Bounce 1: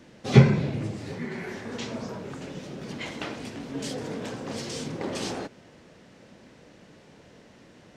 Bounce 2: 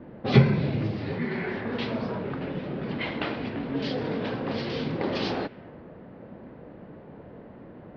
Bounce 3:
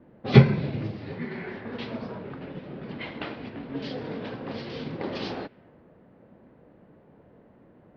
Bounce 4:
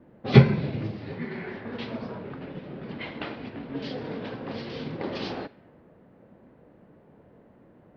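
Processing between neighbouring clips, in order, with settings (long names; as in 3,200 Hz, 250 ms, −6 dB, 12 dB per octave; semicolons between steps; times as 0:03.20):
Butterworth low-pass 4,900 Hz 48 dB per octave; low-pass that shuts in the quiet parts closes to 910 Hz, open at −25 dBFS; downward compressor 1.5 to 1, threshold −40 dBFS, peak gain reduction 11.5 dB; level +8 dB
expander for the loud parts 1.5 to 1, over −39 dBFS; level +4 dB
four-comb reverb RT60 0.39 s, combs from 27 ms, DRR 18.5 dB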